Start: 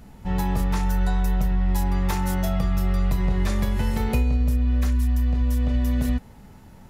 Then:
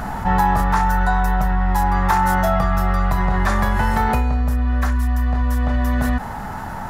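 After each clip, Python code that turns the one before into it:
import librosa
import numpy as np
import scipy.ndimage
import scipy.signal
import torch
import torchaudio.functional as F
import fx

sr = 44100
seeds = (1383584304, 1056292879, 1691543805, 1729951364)

y = fx.rider(x, sr, range_db=10, speed_s=0.5)
y = fx.band_shelf(y, sr, hz=1100.0, db=13.0, octaves=1.7)
y = fx.env_flatten(y, sr, amount_pct=50)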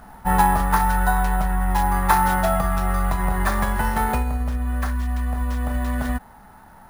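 y = fx.peak_eq(x, sr, hz=110.0, db=-7.0, octaves=0.61)
y = fx.sample_hold(y, sr, seeds[0], rate_hz=11000.0, jitter_pct=0)
y = fx.upward_expand(y, sr, threshold_db=-27.0, expansion=2.5)
y = y * 10.0 ** (2.0 / 20.0)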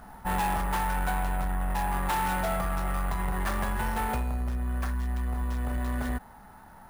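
y = 10.0 ** (-21.0 / 20.0) * np.tanh(x / 10.0 ** (-21.0 / 20.0))
y = y * 10.0 ** (-3.5 / 20.0)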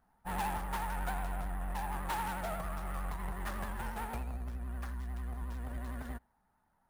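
y = fx.vibrato(x, sr, rate_hz=11.0, depth_cents=90.0)
y = y + 10.0 ** (-19.0 / 20.0) * np.pad(y, (int(83 * sr / 1000.0), 0))[:len(y)]
y = fx.upward_expand(y, sr, threshold_db=-38.0, expansion=2.5)
y = y * 10.0 ** (-6.5 / 20.0)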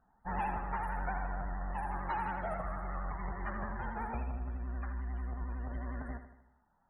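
y = fx.spec_topn(x, sr, count=64)
y = fx.echo_feedback(y, sr, ms=78, feedback_pct=54, wet_db=-10)
y = y * 10.0 ** (1.0 / 20.0)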